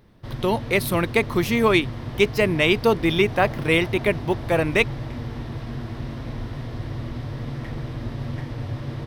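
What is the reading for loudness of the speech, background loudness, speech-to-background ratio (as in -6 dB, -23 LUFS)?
-21.5 LUFS, -32.0 LUFS, 10.5 dB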